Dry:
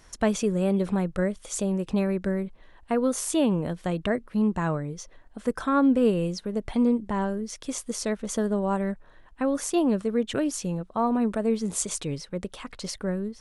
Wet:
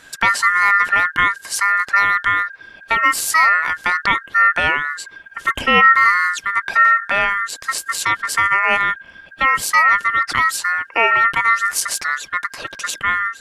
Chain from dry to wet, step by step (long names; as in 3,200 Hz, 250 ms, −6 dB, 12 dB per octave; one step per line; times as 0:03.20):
notch filter 480 Hz, Q 12
ring modulation 1,600 Hz
boost into a limiter +13.5 dB
level −1 dB